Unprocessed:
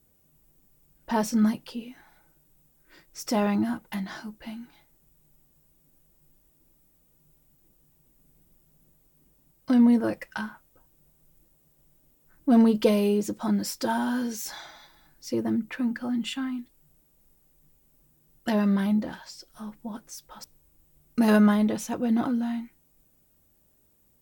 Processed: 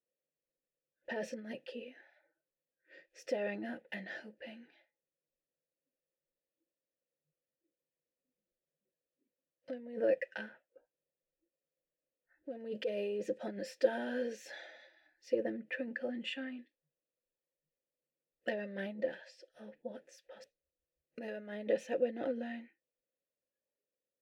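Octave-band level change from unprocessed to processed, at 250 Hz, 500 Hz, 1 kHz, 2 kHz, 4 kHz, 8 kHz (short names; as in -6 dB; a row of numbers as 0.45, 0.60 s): -20.5 dB, -5.5 dB, -17.0 dB, -7.0 dB, -11.0 dB, under -15 dB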